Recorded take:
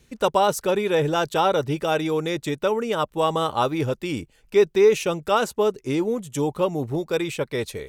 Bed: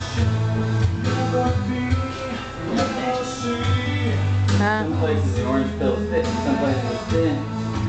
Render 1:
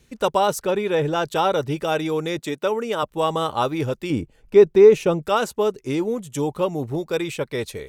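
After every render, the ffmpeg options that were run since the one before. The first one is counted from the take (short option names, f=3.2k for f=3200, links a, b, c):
-filter_complex "[0:a]asettb=1/sr,asplit=3[a][b][c];[a]atrim=end=0.594[d];[b]atrim=start=0.59:end=1.26,asetpts=PTS-STARTPTS,afade=t=in:d=0.004:c=qsin,afade=t=out:st=0.666:d=0.004:c=qsin,highshelf=f=5.4k:g=-7[e];[c]atrim=start=1.256[f];[d][e]acrossfade=d=0.004:c1=hsin:c2=qsin[g];[g][f]acrossfade=d=0.004:c1=qsin:c2=hsin,asettb=1/sr,asplit=3[h][i][j];[h]atrim=end=2.394[k];[i]atrim=start=2.39:end=3.03,asetpts=PTS-STARTPTS,afade=t=in:d=0.004:c=qsin,afade=t=out:st=0.636:d=0.004:c=qsin,highpass=190[l];[j]atrim=start=3.026[m];[k][l]acrossfade=d=0.004:c1=hsin:c2=qsin[n];[n][m]acrossfade=d=0.004:c1=qsin:c2=hsin,asettb=1/sr,asplit=3[o][p][q];[o]atrim=end=4.104[r];[p]atrim=start=4.1:end=5.22,asetpts=PTS-STARTPTS,afade=t=in:d=0.004:c=qsin,afade=t=out:st=1.116:d=0.004:c=qsin,tiltshelf=f=1.4k:g=6[s];[q]atrim=start=5.216[t];[r][s]acrossfade=d=0.004:c1=hsin:c2=qsin[u];[u][t]acrossfade=d=0.004:c1=qsin:c2=hsin"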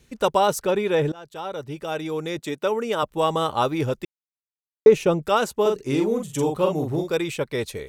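-filter_complex "[0:a]asettb=1/sr,asplit=3[a][b][c];[a]atrim=end=5.614[d];[b]atrim=start=5.61:end=7.15,asetpts=PTS-STARTPTS,afade=t=in:d=0.004:c=qsin,afade=t=out:st=1.536:d=0.004:c=qsin,asplit=2[e][f];[f]adelay=44,volume=-4dB[g];[e][g]amix=inputs=2:normalize=0,atrim=end_sample=67914[h];[c]atrim=start=7.146[i];[d][h]acrossfade=d=0.004:c1=hsin:c2=qsin[j];[j][i]acrossfade=d=0.004:c1=qsin:c2=hsin,asplit=4[k][l][m][n];[k]atrim=end=1.12,asetpts=PTS-STARTPTS,afade=t=out:st=1.116:d=0.004:c=hsin:silence=0.0749894[o];[l]atrim=start=1.12:end=4.05,asetpts=PTS-STARTPTS,afade=t=in:d=1.76:silence=0.0749894,afade=t=out:st=2.926:d=0.004:c=hsin[p];[m]atrim=start=4.05:end=4.86,asetpts=PTS-STARTPTS,volume=0[q];[n]atrim=start=4.86,asetpts=PTS-STARTPTS,afade=t=in:d=0.004:c=hsin[r];[o][p][q][r]concat=n=4:v=0:a=1"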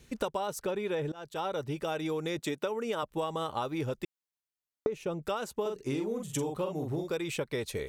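-af "acompressor=threshold=-29dB:ratio=16"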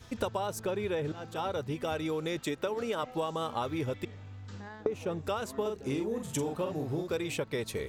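-filter_complex "[1:a]volume=-26dB[a];[0:a][a]amix=inputs=2:normalize=0"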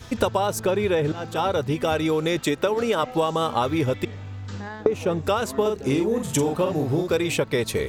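-af "volume=10.5dB"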